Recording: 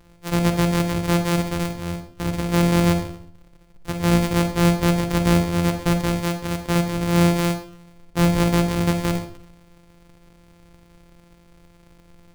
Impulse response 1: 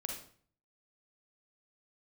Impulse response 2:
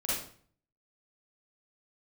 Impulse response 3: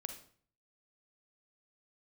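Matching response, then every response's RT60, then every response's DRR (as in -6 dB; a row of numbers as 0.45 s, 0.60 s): 3; 0.50 s, 0.50 s, 0.50 s; 1.0 dB, -9.0 dB, 6.0 dB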